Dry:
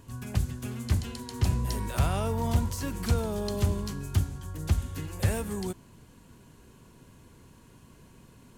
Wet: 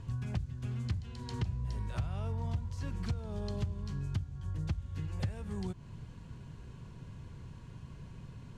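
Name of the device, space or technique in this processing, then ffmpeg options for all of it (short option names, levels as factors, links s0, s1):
jukebox: -af "lowpass=5200,lowshelf=f=190:t=q:w=1.5:g=7.5,acompressor=threshold=0.02:ratio=5"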